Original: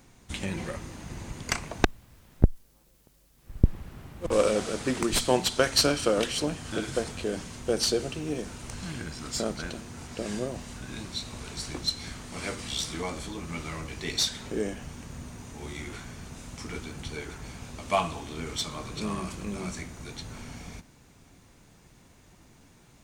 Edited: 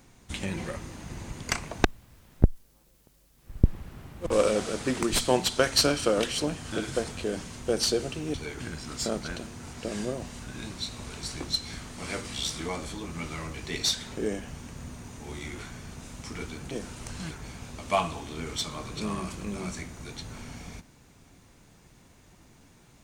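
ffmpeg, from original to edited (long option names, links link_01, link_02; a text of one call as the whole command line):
ffmpeg -i in.wav -filter_complex "[0:a]asplit=5[link_01][link_02][link_03][link_04][link_05];[link_01]atrim=end=8.342[link_06];[link_02]atrim=start=17.048:end=17.312[link_07];[link_03]atrim=start=8.938:end=17.052[link_08];[link_04]atrim=start=8.338:end=8.942[link_09];[link_05]atrim=start=17.308[link_10];[link_06][link_07]acrossfade=duration=0.004:curve1=hsin:curve2=hsin[link_11];[link_11][link_08]acrossfade=duration=0.004:curve1=hsin:curve2=hsin[link_12];[link_12][link_09]acrossfade=duration=0.004:curve1=hsin:curve2=hsin[link_13];[link_13][link_10]acrossfade=duration=0.004:curve1=hsin:curve2=hsin" out.wav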